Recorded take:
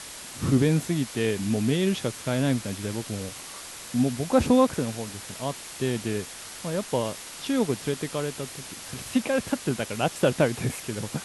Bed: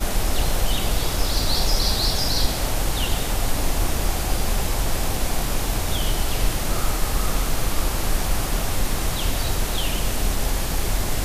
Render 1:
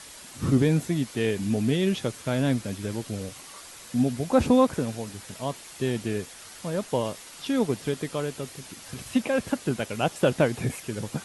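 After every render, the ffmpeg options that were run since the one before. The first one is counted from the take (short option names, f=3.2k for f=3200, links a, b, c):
-af "afftdn=nr=6:nf=-41"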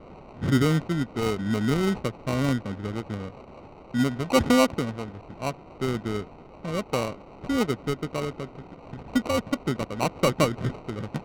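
-af "acrusher=samples=26:mix=1:aa=0.000001,adynamicsmooth=sensitivity=3.5:basefreq=1.7k"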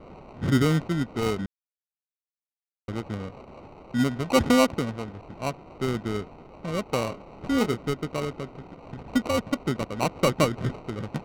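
-filter_complex "[0:a]asettb=1/sr,asplit=3[a][b][c];[a]atrim=end=7.034[d];[b]atrim=start=7.03:end=7.82,asetpts=PTS-STARTPTS,afade=t=in:d=0.004:c=qsin,afade=t=out:st=0.786:d=0.004:c=qsin,asplit=2[e][f];[f]adelay=26,volume=-9dB[g];[e][g]amix=inputs=2:normalize=0,atrim=end_sample=34839[h];[c]atrim=start=7.816[i];[d][h]acrossfade=d=0.004:c1=hsin:c2=qsin[j];[j][i]acrossfade=d=0.004:c1=qsin:c2=hsin,asplit=3[k][l][m];[k]atrim=end=1.46,asetpts=PTS-STARTPTS,afade=t=out:st=1.456:d=0.004:c=hsin[n];[l]atrim=start=1.46:end=2.88,asetpts=PTS-STARTPTS,volume=0[o];[m]atrim=start=2.88,asetpts=PTS-STARTPTS,afade=t=in:d=0.004:c=hsin[p];[n][o][p]concat=n=3:v=0:a=1"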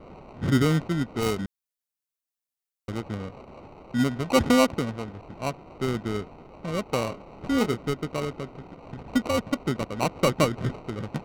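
-filter_complex "[0:a]asettb=1/sr,asplit=3[a][b][c];[a]atrim=end=1.204[d];[b]atrim=start=1.2:end=2.98,asetpts=PTS-STARTPTS,afade=t=in:d=0.004:c=qsin,afade=t=out:st=1.776:d=0.004:c=qsin,highshelf=f=5.8k:g=7.5[e];[c]atrim=start=2.976[f];[d][e]acrossfade=d=0.004:c1=hsin:c2=qsin[g];[g][f]acrossfade=d=0.004:c1=qsin:c2=hsin"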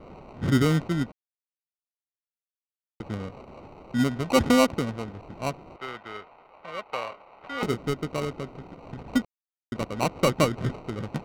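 -filter_complex "[0:a]asettb=1/sr,asplit=3[a][b][c];[a]atrim=end=5.764[d];[b]atrim=start=5.76:end=7.63,asetpts=PTS-STARTPTS,afade=t=in:d=0.004:c=qsin,afade=t=out:st=1.866:d=0.004:c=qsin,acrossover=split=590 3700:gain=0.0891 1 0.141[e][f][g];[e][f][g]amix=inputs=3:normalize=0[h];[c]atrim=start=7.626[i];[d][h]acrossfade=d=0.004:c1=hsin:c2=qsin[j];[j][i]acrossfade=d=0.004:c1=qsin:c2=hsin,asplit=5[k][l][m][n][o];[k]atrim=end=1.12,asetpts=PTS-STARTPTS,afade=t=out:st=1.116:d=0.004:c=hsin[p];[l]atrim=start=1.12:end=3,asetpts=PTS-STARTPTS,volume=0[q];[m]atrim=start=3:end=9.25,asetpts=PTS-STARTPTS,afade=t=in:d=0.004:c=hsin,afade=t=out:st=6.246:d=0.004:c=hsin[r];[n]atrim=start=9.25:end=9.72,asetpts=PTS-STARTPTS,volume=0[s];[o]atrim=start=9.72,asetpts=PTS-STARTPTS,afade=t=in:d=0.004:c=hsin[t];[p][q][r][s][t]concat=n=5:v=0:a=1"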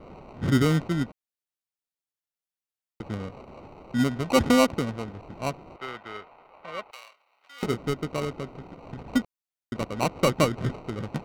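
-filter_complex "[0:a]asettb=1/sr,asplit=3[a][b][c];[a]atrim=end=6.914[d];[b]atrim=start=6.91:end=7.63,asetpts=PTS-STARTPTS,afade=t=in:d=0.004:c=qsin,afade=t=out:st=0.716:d=0.004:c=qsin,aderivative[e];[c]atrim=start=7.626[f];[d][e]acrossfade=d=0.004:c1=hsin:c2=qsin[g];[g][f]acrossfade=d=0.004:c1=qsin:c2=hsin"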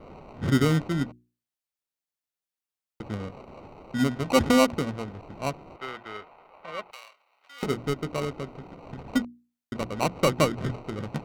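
-af "bandreject=f=60:t=h:w=6,bandreject=f=120:t=h:w=6,bandreject=f=180:t=h:w=6,bandreject=f=240:t=h:w=6,bandreject=f=300:t=h:w=6,bandreject=f=360:t=h:w=6"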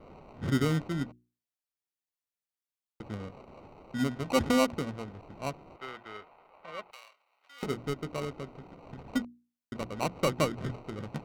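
-af "volume=-5.5dB"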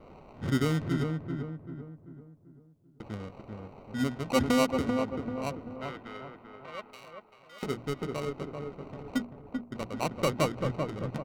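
-filter_complex "[0:a]asplit=2[a][b];[b]adelay=389,lowpass=f=1.3k:p=1,volume=-4dB,asplit=2[c][d];[d]adelay=389,lowpass=f=1.3k:p=1,volume=0.47,asplit=2[e][f];[f]adelay=389,lowpass=f=1.3k:p=1,volume=0.47,asplit=2[g][h];[h]adelay=389,lowpass=f=1.3k:p=1,volume=0.47,asplit=2[i][j];[j]adelay=389,lowpass=f=1.3k:p=1,volume=0.47,asplit=2[k][l];[l]adelay=389,lowpass=f=1.3k:p=1,volume=0.47[m];[a][c][e][g][i][k][m]amix=inputs=7:normalize=0"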